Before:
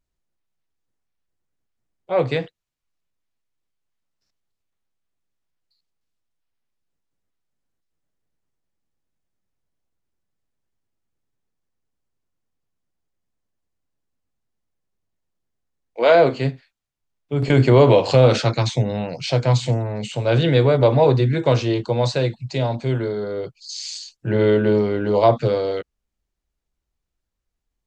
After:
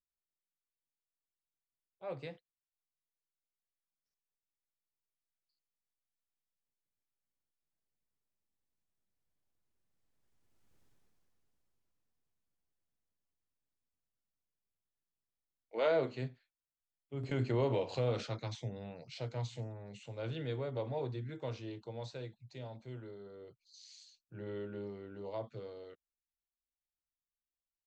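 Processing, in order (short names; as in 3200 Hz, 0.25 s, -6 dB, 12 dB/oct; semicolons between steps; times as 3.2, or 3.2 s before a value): Doppler pass-by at 10.8, 13 m/s, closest 3.1 m; gain +9 dB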